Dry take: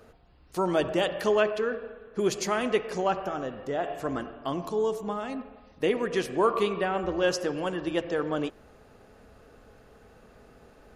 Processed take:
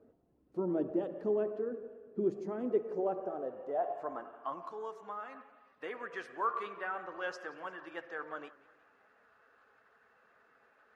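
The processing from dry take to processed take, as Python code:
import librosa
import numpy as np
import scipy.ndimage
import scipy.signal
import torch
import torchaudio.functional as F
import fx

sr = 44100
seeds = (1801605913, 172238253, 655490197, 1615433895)

y = fx.spec_quant(x, sr, step_db=15)
y = fx.dynamic_eq(y, sr, hz=2900.0, q=1.4, threshold_db=-50.0, ratio=4.0, max_db=-6)
y = fx.filter_sweep_bandpass(y, sr, from_hz=290.0, to_hz=1500.0, start_s=2.55, end_s=4.93, q=1.9)
y = fx.echo_warbled(y, sr, ms=176, feedback_pct=53, rate_hz=2.8, cents=126, wet_db=-21)
y = y * librosa.db_to_amplitude(-1.5)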